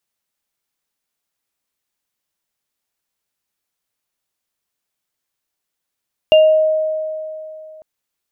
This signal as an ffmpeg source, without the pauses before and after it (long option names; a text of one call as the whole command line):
ffmpeg -f lavfi -i "aevalsrc='0.562*pow(10,-3*t/2.84)*sin(2*PI*626*t)+0.224*pow(10,-3*t/0.37)*sin(2*PI*2800*t)':duration=1.5:sample_rate=44100" out.wav